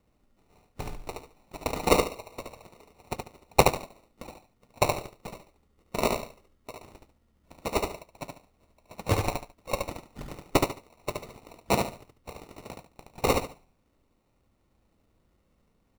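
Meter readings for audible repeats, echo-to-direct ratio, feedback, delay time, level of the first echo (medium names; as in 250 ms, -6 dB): 3, -3.5 dB, 25%, 72 ms, -4.0 dB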